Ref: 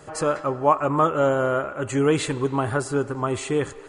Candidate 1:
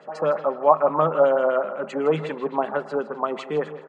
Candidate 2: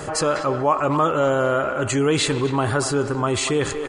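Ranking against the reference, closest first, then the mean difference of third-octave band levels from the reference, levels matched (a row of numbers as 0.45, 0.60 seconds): 2, 1; 4.0, 7.0 decibels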